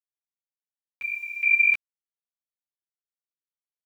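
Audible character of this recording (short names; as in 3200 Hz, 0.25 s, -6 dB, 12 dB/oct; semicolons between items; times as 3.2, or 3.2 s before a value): random-step tremolo, depth 85%; a quantiser's noise floor 10-bit, dither none; a shimmering, thickened sound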